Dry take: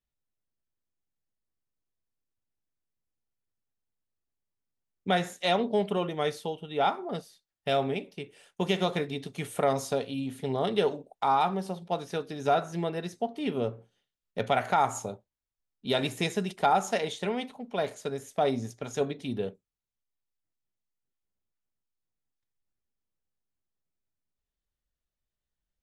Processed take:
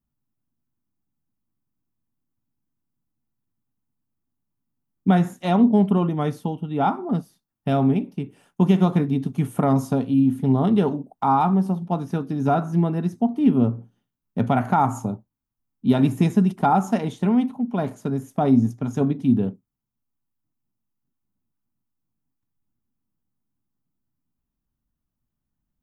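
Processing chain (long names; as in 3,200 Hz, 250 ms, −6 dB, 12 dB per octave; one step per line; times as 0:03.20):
octave-band graphic EQ 125/250/500/1,000/2,000/4,000/8,000 Hz +7/+12/−10/+4/−8/−11/−8 dB
level +6 dB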